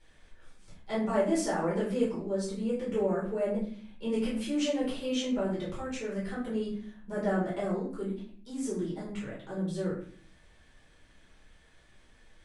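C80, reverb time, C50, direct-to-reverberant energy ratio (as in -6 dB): 9.0 dB, 0.50 s, 4.5 dB, -8.5 dB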